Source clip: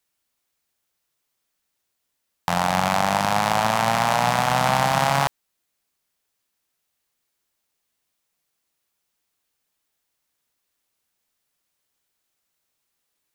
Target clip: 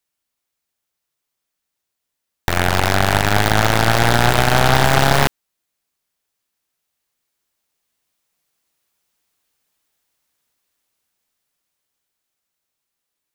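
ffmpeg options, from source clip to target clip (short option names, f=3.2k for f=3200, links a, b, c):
-af "dynaudnorm=f=330:g=17:m=8.5dB,aeval=exprs='0.891*(cos(1*acos(clip(val(0)/0.891,-1,1)))-cos(1*PI/2))+0.447*(cos(8*acos(clip(val(0)/0.891,-1,1)))-cos(8*PI/2))':c=same,volume=-3dB"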